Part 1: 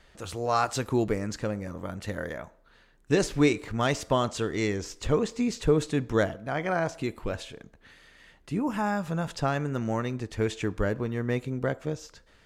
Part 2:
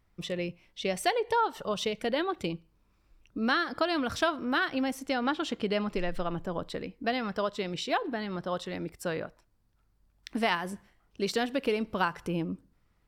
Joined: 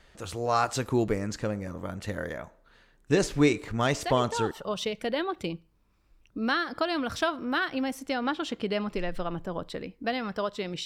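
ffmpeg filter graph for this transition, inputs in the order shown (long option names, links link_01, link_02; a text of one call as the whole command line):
ffmpeg -i cue0.wav -i cue1.wav -filter_complex "[1:a]asplit=2[link_01][link_02];[0:a]apad=whole_dur=10.85,atrim=end=10.85,atrim=end=4.512[link_03];[link_02]atrim=start=1.508:end=7.85[link_04];[link_01]atrim=start=1.01:end=1.51,asetpts=PTS-STARTPTS,volume=-6.5dB,afade=type=in:duration=0.004:curve=hsin,afade=type=out:start_time=0.496:duration=0.004:curve=hsin,adelay=176841S[link_05];[link_03][link_04]acrossfade=duration=0.004:curve1=hsin:curve2=hsin[link_06];[link_06][link_05]amix=inputs=2:normalize=0" out.wav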